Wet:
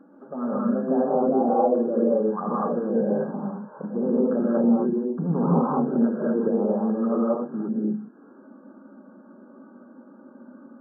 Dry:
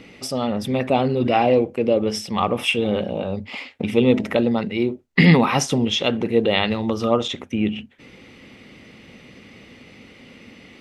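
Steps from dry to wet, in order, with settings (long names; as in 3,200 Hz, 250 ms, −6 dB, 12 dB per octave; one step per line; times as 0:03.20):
flanger swept by the level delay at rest 3.8 ms, full sweep at −15.5 dBFS
brickwall limiter −13.5 dBFS, peak gain reduction 9.5 dB
brick-wall band-pass 150–1,700 Hz
reverb whose tail is shaped and stops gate 270 ms rising, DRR −6.5 dB
level −4.5 dB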